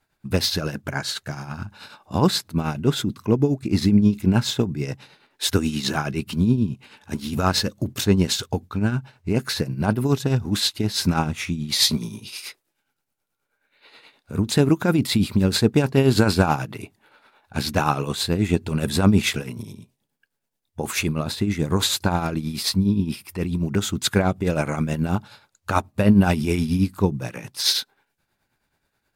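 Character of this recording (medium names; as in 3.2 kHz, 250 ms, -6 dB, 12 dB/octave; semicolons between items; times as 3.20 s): tremolo triangle 9.4 Hz, depth 65%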